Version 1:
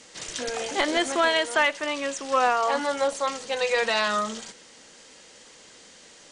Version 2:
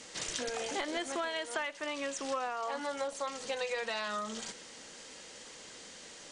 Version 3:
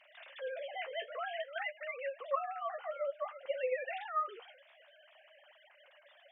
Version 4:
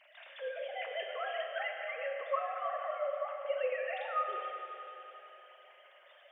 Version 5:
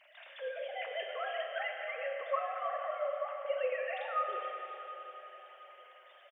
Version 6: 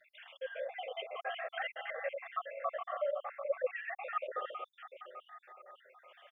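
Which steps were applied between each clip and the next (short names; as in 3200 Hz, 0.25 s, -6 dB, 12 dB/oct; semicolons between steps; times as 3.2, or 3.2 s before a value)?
compressor 5:1, threshold -34 dBFS, peak gain reduction 15.5 dB
sine-wave speech; flange 0.53 Hz, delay 5.1 ms, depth 8.4 ms, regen -40%; gain +1 dB
Schroeder reverb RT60 3.5 s, combs from 27 ms, DRR 2 dB
feedback echo 0.724 s, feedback 41%, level -17 dB
random spectral dropouts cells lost 59%; gain +1.5 dB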